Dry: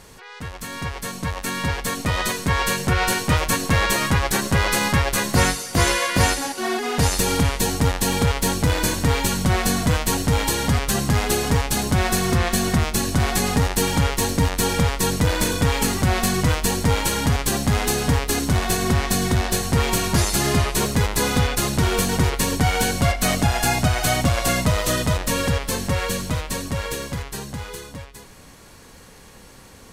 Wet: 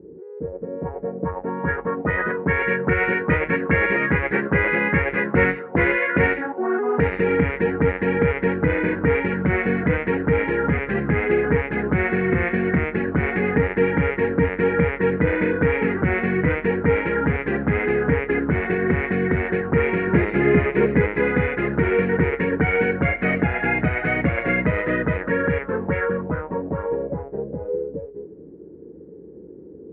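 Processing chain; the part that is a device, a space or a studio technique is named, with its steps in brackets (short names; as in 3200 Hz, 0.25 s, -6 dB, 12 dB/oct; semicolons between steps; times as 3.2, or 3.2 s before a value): 20.07–21.09 bell 280 Hz +3.5 dB 2.5 oct; envelope filter bass rig (envelope low-pass 330–2200 Hz up, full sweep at -17 dBFS; speaker cabinet 67–2100 Hz, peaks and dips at 110 Hz -8 dB, 170 Hz +6 dB, 320 Hz +7 dB, 450 Hz +10 dB, 730 Hz -5 dB, 1100 Hz -8 dB); gain -2.5 dB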